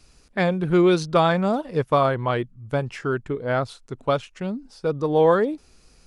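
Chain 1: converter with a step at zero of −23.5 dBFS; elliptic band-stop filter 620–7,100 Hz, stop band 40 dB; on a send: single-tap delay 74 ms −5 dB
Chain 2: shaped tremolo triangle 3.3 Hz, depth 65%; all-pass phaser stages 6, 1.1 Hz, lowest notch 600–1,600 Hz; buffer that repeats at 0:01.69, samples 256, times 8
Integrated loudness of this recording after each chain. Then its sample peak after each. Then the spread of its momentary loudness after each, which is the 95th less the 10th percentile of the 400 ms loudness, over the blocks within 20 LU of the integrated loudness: −21.0, −30.0 LKFS; −6.5, −13.0 dBFS; 10, 12 LU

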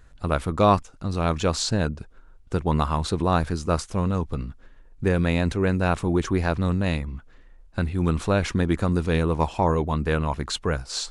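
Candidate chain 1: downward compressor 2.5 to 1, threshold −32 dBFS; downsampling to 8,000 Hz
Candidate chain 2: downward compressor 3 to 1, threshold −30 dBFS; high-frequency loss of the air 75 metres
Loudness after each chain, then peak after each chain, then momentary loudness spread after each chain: −33.5, −33.5 LKFS; −17.5, −17.5 dBFS; 6, 5 LU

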